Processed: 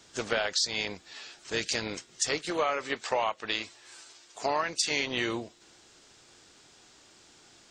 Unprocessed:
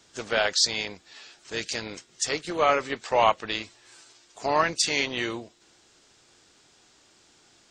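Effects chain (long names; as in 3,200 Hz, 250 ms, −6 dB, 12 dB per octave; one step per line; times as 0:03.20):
0:02.38–0:04.91: low-shelf EQ 260 Hz −8 dB
downward compressor 12 to 1, threshold −26 dBFS, peak gain reduction 12 dB
level +2 dB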